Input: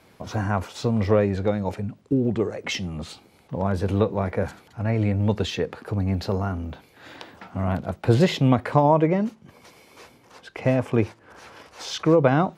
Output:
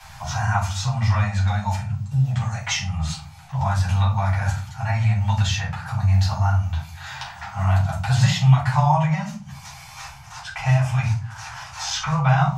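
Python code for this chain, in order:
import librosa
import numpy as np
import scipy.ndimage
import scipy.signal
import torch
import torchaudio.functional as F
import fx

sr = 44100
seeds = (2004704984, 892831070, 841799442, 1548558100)

y = scipy.signal.sosfilt(scipy.signal.cheby1(3, 1.0, [160.0, 780.0], 'bandstop', fs=sr, output='sos'), x)
y = fx.peak_eq(y, sr, hz=6500.0, db=9.5, octaves=0.73)
y = fx.hum_notches(y, sr, base_hz=50, count=4)
y = fx.room_shoebox(y, sr, seeds[0], volume_m3=200.0, walls='furnished', distance_m=4.5)
y = fx.band_squash(y, sr, depth_pct=40)
y = F.gain(torch.from_numpy(y), -3.5).numpy()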